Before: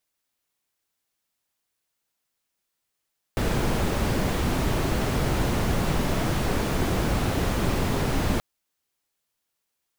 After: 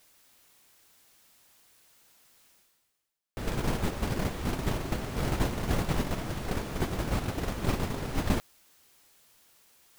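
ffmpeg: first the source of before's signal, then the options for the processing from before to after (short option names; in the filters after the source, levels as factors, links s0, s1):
-f lavfi -i "anoisesrc=c=brown:a=0.313:d=5.03:r=44100:seed=1"
-af "agate=range=0.282:threshold=0.0794:ratio=16:detection=peak,areverse,acompressor=mode=upward:threshold=0.0126:ratio=2.5,areverse"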